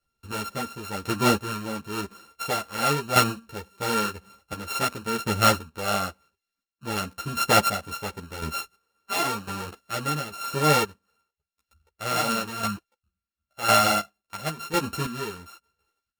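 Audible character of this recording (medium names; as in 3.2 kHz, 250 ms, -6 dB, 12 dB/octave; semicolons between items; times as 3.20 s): a buzz of ramps at a fixed pitch in blocks of 32 samples; chopped level 0.95 Hz, depth 65%, duty 30%; a shimmering, thickened sound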